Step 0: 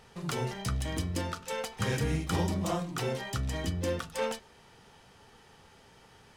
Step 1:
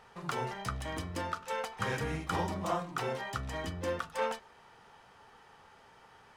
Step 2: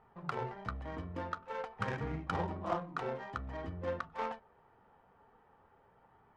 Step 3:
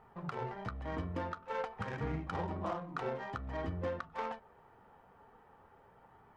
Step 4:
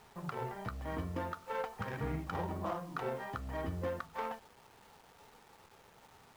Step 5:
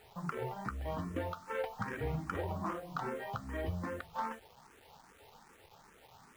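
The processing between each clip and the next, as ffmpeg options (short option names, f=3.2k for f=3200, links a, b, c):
-af "equalizer=f=1.1k:t=o:w=2.3:g=11.5,volume=-8dB"
-af "flanger=delay=0.9:depth=3.5:regen=-69:speed=0.48:shape=sinusoidal,aeval=exprs='0.0631*(cos(1*acos(clip(val(0)/0.0631,-1,1)))-cos(1*PI/2))+0.00794*(cos(3*acos(clip(val(0)/0.0631,-1,1)))-cos(3*PI/2))':c=same,adynamicsmooth=sensitivity=6.5:basefreq=1.2k,volume=5dB"
-af "alimiter=level_in=6dB:limit=-24dB:level=0:latency=1:release=244,volume=-6dB,volume=4dB"
-af "acrusher=bits=9:mix=0:aa=0.000001"
-filter_complex "[0:a]asplit=2[a][b];[b]afreqshift=2.5[c];[a][c]amix=inputs=2:normalize=1,volume=3.5dB"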